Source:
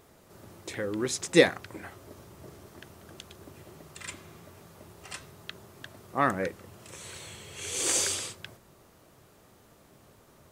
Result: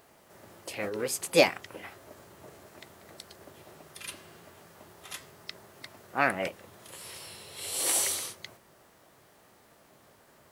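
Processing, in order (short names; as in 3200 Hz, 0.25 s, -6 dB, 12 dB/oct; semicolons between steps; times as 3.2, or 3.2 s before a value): low shelf 140 Hz -10.5 dB; formant shift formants +4 st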